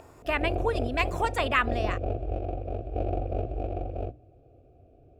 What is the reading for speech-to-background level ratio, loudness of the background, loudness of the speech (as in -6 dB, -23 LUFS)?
4.0 dB, -33.0 LUFS, -29.0 LUFS